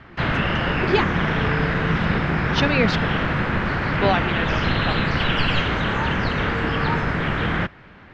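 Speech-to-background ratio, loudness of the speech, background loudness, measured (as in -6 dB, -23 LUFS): -4.5 dB, -26.5 LUFS, -22.0 LUFS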